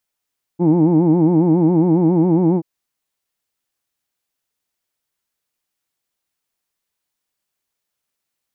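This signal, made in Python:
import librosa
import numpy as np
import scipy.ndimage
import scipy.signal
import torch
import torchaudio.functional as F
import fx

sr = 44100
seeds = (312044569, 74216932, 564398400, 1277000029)

y = fx.vowel(sr, seeds[0], length_s=2.03, word="who'd", hz=164.0, glide_st=1.0, vibrato_hz=7.3, vibrato_st=1.4)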